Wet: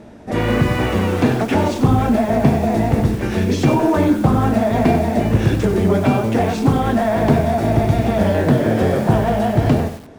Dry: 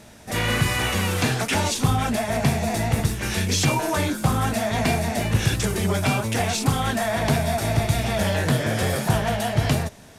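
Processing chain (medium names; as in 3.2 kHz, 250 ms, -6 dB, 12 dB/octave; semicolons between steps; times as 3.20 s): FFT filter 140 Hz 0 dB, 300 Hz +8 dB, 13 kHz -20 dB; bit-crushed delay 94 ms, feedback 35%, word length 6-bit, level -9.5 dB; trim +4.5 dB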